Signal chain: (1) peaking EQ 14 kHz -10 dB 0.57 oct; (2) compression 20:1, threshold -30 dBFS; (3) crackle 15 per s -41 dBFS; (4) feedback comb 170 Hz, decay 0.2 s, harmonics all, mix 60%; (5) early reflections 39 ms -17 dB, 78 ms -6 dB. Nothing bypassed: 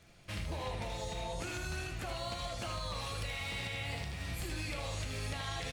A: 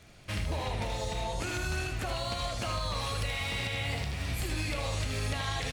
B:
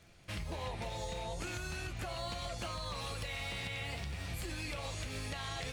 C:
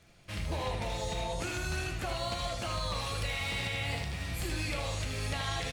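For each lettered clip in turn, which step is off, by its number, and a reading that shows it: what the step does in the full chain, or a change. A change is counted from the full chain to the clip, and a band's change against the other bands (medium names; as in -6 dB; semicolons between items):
4, loudness change +6.0 LU; 5, loudness change -1.0 LU; 2, mean gain reduction 4.0 dB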